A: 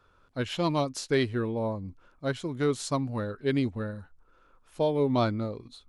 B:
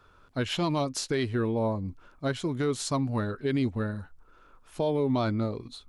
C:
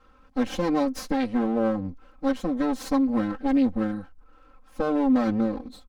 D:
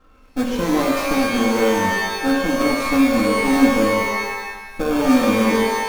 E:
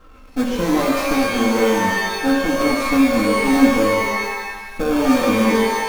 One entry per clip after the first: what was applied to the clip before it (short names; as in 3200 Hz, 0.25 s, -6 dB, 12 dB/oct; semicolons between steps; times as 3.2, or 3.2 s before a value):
notch 520 Hz, Q 14; in parallel at -2.5 dB: compressor, threshold -32 dBFS, peak gain reduction 11.5 dB; on the sum: limiter -19 dBFS, peak gain reduction 6 dB
minimum comb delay 3.7 ms; high shelf 2300 Hz -9.5 dB; comb 3.9 ms, depth 89%; gain +1.5 dB
in parallel at -5 dB: sample-rate reducer 1000 Hz, jitter 0%; on the sum: shimmer reverb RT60 1.1 s, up +12 st, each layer -2 dB, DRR 1.5 dB
G.711 law mismatch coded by mu; flange 0.77 Hz, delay 1.8 ms, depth 4.6 ms, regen -64%; gain +4.5 dB